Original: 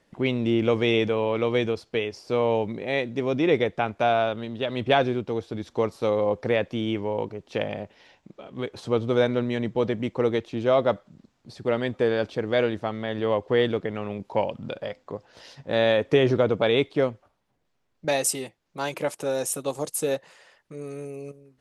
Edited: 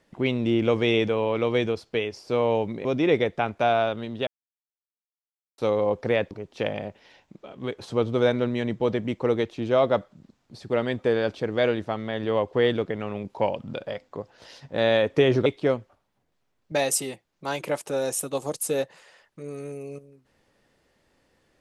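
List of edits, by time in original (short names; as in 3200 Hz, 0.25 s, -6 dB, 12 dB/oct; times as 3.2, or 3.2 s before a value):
2.85–3.25 cut
4.67–5.98 mute
6.71–7.26 cut
16.41–16.79 cut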